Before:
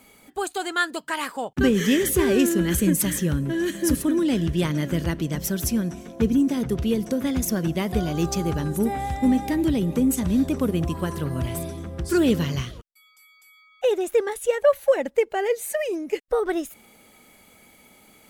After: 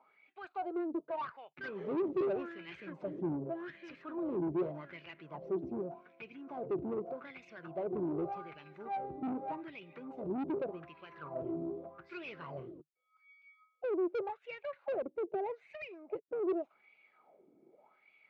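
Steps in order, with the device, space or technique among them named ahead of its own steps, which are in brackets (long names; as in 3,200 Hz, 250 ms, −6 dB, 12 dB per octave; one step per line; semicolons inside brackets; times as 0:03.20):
wah-wah guitar rig (LFO wah 0.84 Hz 300–2,500 Hz, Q 5.3; tube saturation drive 35 dB, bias 0.3; loudspeaker in its box 90–3,600 Hz, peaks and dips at 150 Hz +8 dB, 230 Hz −3 dB, 370 Hz +6 dB, 650 Hz +5 dB, 1,800 Hz −10 dB, 3,200 Hz −8 dB)
level +1 dB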